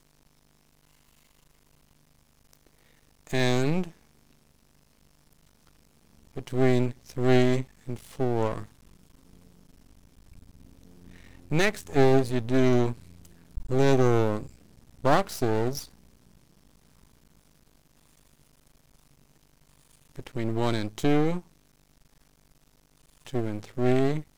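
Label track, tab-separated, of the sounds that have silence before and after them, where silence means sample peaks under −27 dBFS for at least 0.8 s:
3.330000	3.840000	sound
6.380000	8.620000	sound
11.520000	15.790000	sound
20.190000	21.380000	sound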